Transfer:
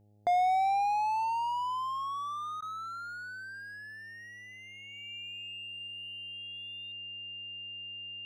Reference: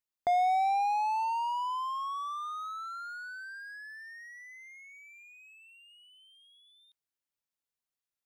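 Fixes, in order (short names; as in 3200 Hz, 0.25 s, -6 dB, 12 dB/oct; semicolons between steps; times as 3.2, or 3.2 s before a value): de-hum 103.9 Hz, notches 8; notch 2800 Hz, Q 30; interpolate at 2.61, 11 ms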